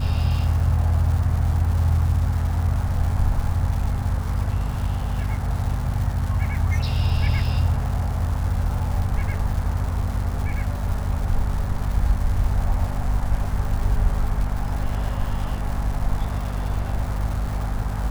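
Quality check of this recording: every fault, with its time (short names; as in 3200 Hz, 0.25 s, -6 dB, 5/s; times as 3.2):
crackle 440/s -31 dBFS
hum 50 Hz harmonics 5 -26 dBFS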